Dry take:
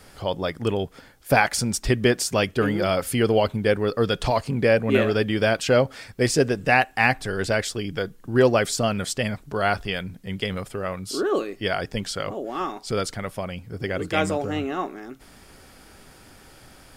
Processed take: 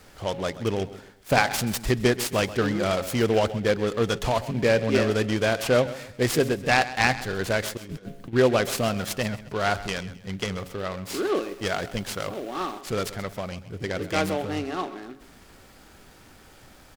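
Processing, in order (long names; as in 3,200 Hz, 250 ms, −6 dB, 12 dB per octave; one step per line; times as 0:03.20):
hum removal 137.8 Hz, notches 6
0:07.77–0:08.33: compressor whose output falls as the input rises −35 dBFS, ratio −0.5
0:11.42–0:12.81: bit-depth reduction 8 bits, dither none
repeating echo 131 ms, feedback 35%, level −15.5 dB
short delay modulated by noise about 2,200 Hz, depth 0.037 ms
level −2 dB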